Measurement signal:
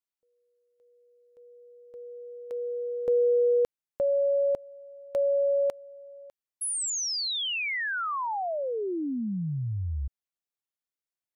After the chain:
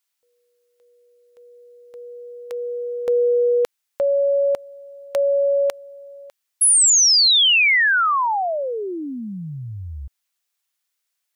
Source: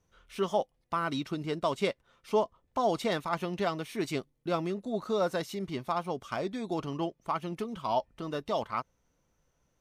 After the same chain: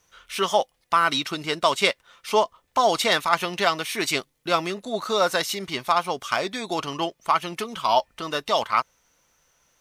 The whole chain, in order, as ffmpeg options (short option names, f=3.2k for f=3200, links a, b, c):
-af "tiltshelf=f=640:g=-9,volume=7.5dB"